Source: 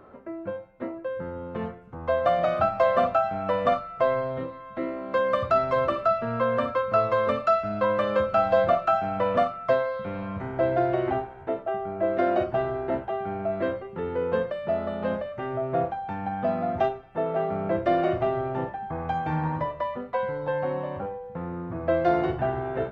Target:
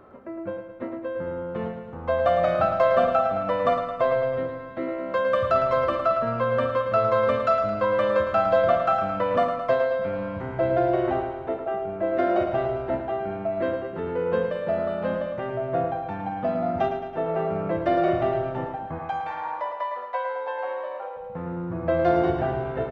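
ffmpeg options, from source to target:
-filter_complex "[0:a]asplit=3[a][b][c];[a]afade=t=out:st=18.98:d=0.02[d];[b]highpass=f=560:w=0.5412,highpass=f=560:w=1.3066,afade=t=in:st=18.98:d=0.02,afade=t=out:st=21.16:d=0.02[e];[c]afade=t=in:st=21.16:d=0.02[f];[d][e][f]amix=inputs=3:normalize=0,aecho=1:1:109|218|327|436|545|654|763|872:0.398|0.239|0.143|0.086|0.0516|0.031|0.0186|0.0111"

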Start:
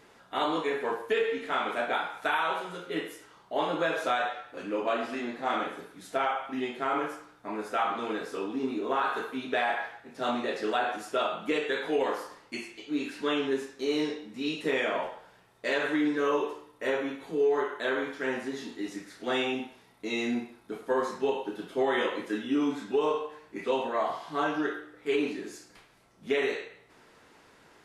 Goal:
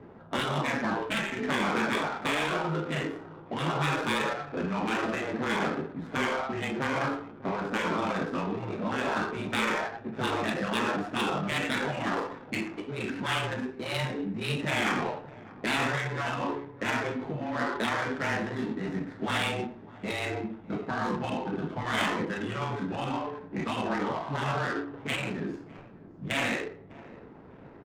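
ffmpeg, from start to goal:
-af "afftfilt=real='re*lt(hypot(re,im),0.0891)':imag='im*lt(hypot(re,im),0.0891)':win_size=1024:overlap=0.75,equalizer=f=160:t=o:w=2.2:g=8,aecho=1:1:602|1204|1806:0.133|0.052|0.0203,afreqshift=-18,adynamicsmooth=sensitivity=8:basefreq=850,volume=7.5dB"

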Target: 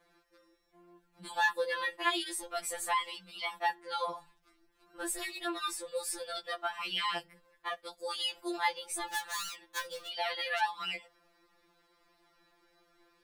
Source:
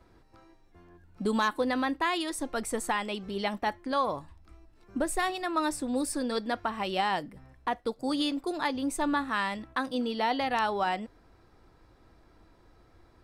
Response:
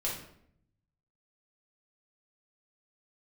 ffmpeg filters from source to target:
-filter_complex "[0:a]bass=f=250:g=-10,treble=f=4k:g=-13,asplit=3[a][b][c];[a]afade=t=out:st=9.07:d=0.02[d];[b]volume=32dB,asoftclip=hard,volume=-32dB,afade=t=in:st=9.07:d=0.02,afade=t=out:st=10.07:d=0.02[e];[c]afade=t=in:st=10.07:d=0.02[f];[d][e][f]amix=inputs=3:normalize=0,crystalizer=i=9.5:c=0,afftfilt=real='re*2.83*eq(mod(b,8),0)':imag='im*2.83*eq(mod(b,8),0)':win_size=2048:overlap=0.75,volume=-6.5dB"

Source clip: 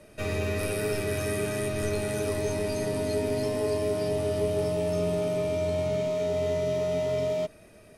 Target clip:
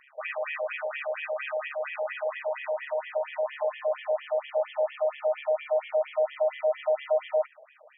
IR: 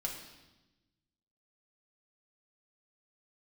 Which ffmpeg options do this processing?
-af "tremolo=f=140:d=0.462,afftfilt=real='re*between(b*sr/1024,640*pow(2500/640,0.5+0.5*sin(2*PI*4.3*pts/sr))/1.41,640*pow(2500/640,0.5+0.5*sin(2*PI*4.3*pts/sr))*1.41)':imag='im*between(b*sr/1024,640*pow(2500/640,0.5+0.5*sin(2*PI*4.3*pts/sr))/1.41,640*pow(2500/640,0.5+0.5*sin(2*PI*4.3*pts/sr))*1.41)':win_size=1024:overlap=0.75,volume=8.5dB"

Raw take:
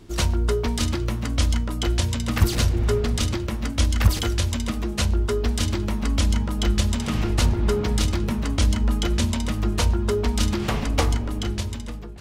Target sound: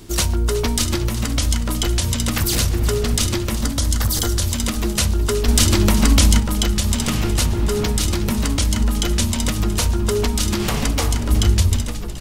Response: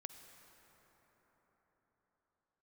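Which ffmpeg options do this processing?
-filter_complex "[0:a]alimiter=limit=-16.5dB:level=0:latency=1:release=138,asettb=1/sr,asplit=3[a][b][c];[a]atrim=end=3.544[d];[b]atrim=start=3.54:end=4.42,asetpts=PTS-STARTPTS,afade=t=in:d=0.004:c=qsin,afade=t=out:st=0.876:d=0.004:c=qsin,equalizer=f=2.5k:t=o:w=0.53:g=-12.5[e];[c]atrim=start=4.416[f];[d][e]acrossfade=d=0.004:c1=hsin:c2=qsin[g];[g][f]acrossfade=d=0.004:c1=qsin:c2=hsin,crystalizer=i=2:c=0,asettb=1/sr,asplit=3[h][i][j];[h]atrim=end=11.294[k];[i]atrim=start=11.29:end=11.85,asetpts=PTS-STARTPTS,afade=t=in:d=0.004:c=qsin,afade=t=out:st=0.556:d=0.004:c=qsin,equalizer=f=73:t=o:w=0.91:g=14[l];[j]atrim=start=11.846[m];[k][l]acrossfade=d=0.004:c1=hsin:c2=qsin[n];[n][m]acrossfade=d=0.004:c1=qsin:c2=hsin,asplit=7[o][p][q][r][s][t][u];[p]adelay=368,afreqshift=-61,volume=-14dB[v];[q]adelay=736,afreqshift=-122,volume=-18.9dB[w];[r]adelay=1104,afreqshift=-183,volume=-23.8dB[x];[s]adelay=1472,afreqshift=-244,volume=-28.6dB[y];[t]adelay=1840,afreqshift=-305,volume=-33.5dB[z];[u]adelay=2208,afreqshift=-366,volume=-38.4dB[aa];[o][v][w][x][y][z][aa]amix=inputs=7:normalize=0,asettb=1/sr,asplit=3[ab][ac][ad];[ab]atrim=end=5.484[ae];[ac]atrim=start=5.48:end=6.4,asetpts=PTS-STARTPTS,afade=t=in:d=0.004:c=qsin,afade=t=out:st=0.916:d=0.004:c=qsin,acontrast=51[af];[ad]atrim=start=6.396[ag];[ae][af]acrossfade=d=0.004:c1=hsin:c2=qsin[ah];[ah][ag]acrossfade=d=0.004:c1=qsin:c2=hsin,volume=5.5dB"

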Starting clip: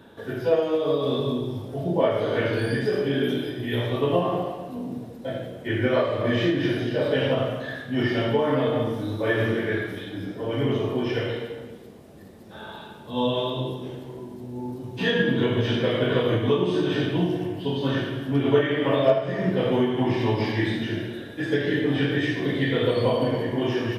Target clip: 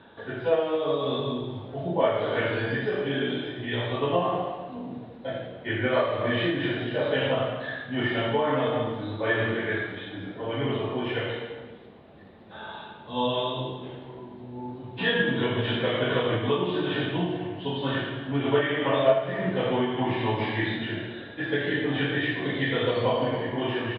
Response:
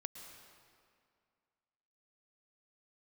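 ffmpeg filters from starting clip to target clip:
-af "firequalizer=gain_entry='entry(390,0);entry(790,6);entry(3800,4);entry(5700,-27)':delay=0.05:min_phase=1,volume=-4.5dB"

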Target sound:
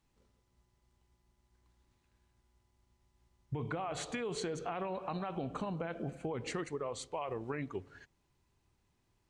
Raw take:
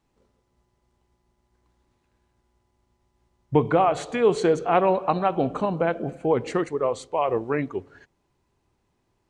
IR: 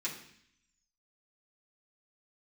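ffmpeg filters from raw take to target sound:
-af "equalizer=f=510:w=0.43:g=-7.5,alimiter=limit=-22.5dB:level=0:latency=1:release=34,acompressor=threshold=-33dB:ratio=6,volume=-1.5dB"

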